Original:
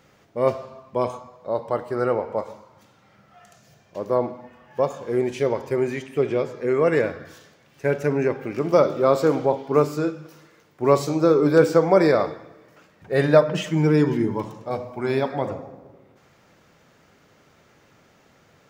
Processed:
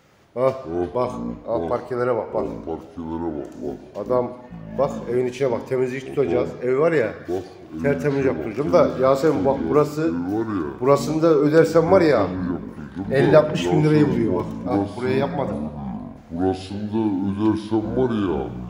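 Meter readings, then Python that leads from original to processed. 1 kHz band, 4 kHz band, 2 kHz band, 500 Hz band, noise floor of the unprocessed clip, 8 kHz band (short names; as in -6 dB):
+2.0 dB, +2.0 dB, +1.5 dB, +1.5 dB, -58 dBFS, n/a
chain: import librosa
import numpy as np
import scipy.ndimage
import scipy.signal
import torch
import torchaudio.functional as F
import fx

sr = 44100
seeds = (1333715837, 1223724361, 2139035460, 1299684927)

y = fx.echo_pitch(x, sr, ms=113, semitones=-7, count=2, db_per_echo=-6.0)
y = F.gain(torch.from_numpy(y), 1.0).numpy()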